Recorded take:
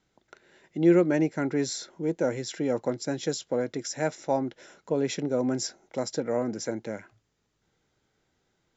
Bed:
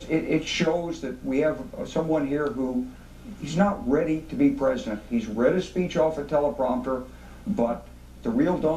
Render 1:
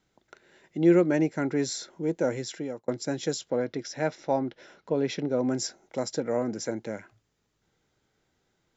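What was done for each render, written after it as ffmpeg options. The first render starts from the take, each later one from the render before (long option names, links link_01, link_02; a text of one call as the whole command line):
ffmpeg -i in.wav -filter_complex "[0:a]asettb=1/sr,asplit=3[link_01][link_02][link_03];[link_01]atrim=end=3.504[link_04];[link_02]atrim=start=3.5:end=5.45,asetpts=PTS-STARTPTS,afade=type=in:duration=0.004:curve=qsin,afade=type=out:start_time=1.946:duration=0.004:curve=qsin,lowpass=frequency=5400:width=0.5412,lowpass=frequency=5400:width=1.3066[link_05];[link_03]atrim=start=5.446[link_06];[link_04][link_05]acrossfade=duration=0.004:curve1=hsin:curve2=qsin[link_07];[link_07][link_06]acrossfade=duration=0.004:curve1=qsin:curve2=hsin,asplit=2[link_08][link_09];[link_08]atrim=end=2.88,asetpts=PTS-STARTPTS,afade=type=out:start_time=2.43:duration=0.45[link_10];[link_09]atrim=start=2.88,asetpts=PTS-STARTPTS,afade=type=in:duration=0.004:curve=hsin[link_11];[link_10][link_11]concat=n=2:v=0:a=1" out.wav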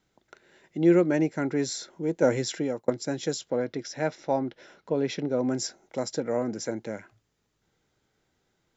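ffmpeg -i in.wav -filter_complex "[0:a]asettb=1/sr,asplit=3[link_01][link_02][link_03];[link_01]atrim=end=2.224[link_04];[link_02]atrim=start=2.22:end=2.9,asetpts=PTS-STARTPTS,afade=type=in:duration=0.004:curve=qsin,afade=type=out:start_time=0.676:duration=0.004:curve=qsin,acontrast=30[link_05];[link_03]atrim=start=2.896[link_06];[link_04][link_05]acrossfade=duration=0.004:curve1=hsin:curve2=qsin[link_07];[link_07][link_06]acrossfade=duration=0.004:curve1=qsin:curve2=hsin" out.wav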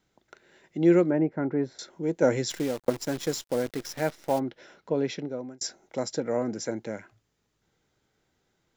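ffmpeg -i in.wav -filter_complex "[0:a]asettb=1/sr,asplit=3[link_01][link_02][link_03];[link_01]atrim=end=1.104[link_04];[link_02]atrim=start=1.1:end=1.79,asetpts=PTS-STARTPTS,afade=type=in:duration=0.004:curve=qsin,afade=type=out:start_time=0.686:duration=0.004:curve=qsin,lowpass=1300[link_05];[link_03]atrim=start=1.786[link_06];[link_04][link_05]acrossfade=duration=0.004:curve1=hsin:curve2=qsin[link_07];[link_07][link_06]acrossfade=duration=0.004:curve1=qsin:curve2=hsin,asplit=3[link_08][link_09][link_10];[link_08]afade=type=out:start_time=2.49:duration=0.02[link_11];[link_09]acrusher=bits=7:dc=4:mix=0:aa=0.000001,afade=type=in:start_time=2.49:duration=0.02,afade=type=out:start_time=4.38:duration=0.02[link_12];[link_10]afade=type=in:start_time=4.38:duration=0.02[link_13];[link_11][link_12][link_13]amix=inputs=3:normalize=0,asplit=2[link_14][link_15];[link_14]atrim=end=5.61,asetpts=PTS-STARTPTS,afade=type=out:start_time=5.01:duration=0.6[link_16];[link_15]atrim=start=5.61,asetpts=PTS-STARTPTS,afade=type=in:duration=0.004:curve=hsin[link_17];[link_16][link_17]concat=n=2:v=0:a=1" out.wav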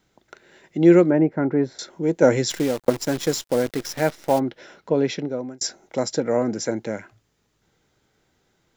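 ffmpeg -i in.wav -af "volume=6.5dB" out.wav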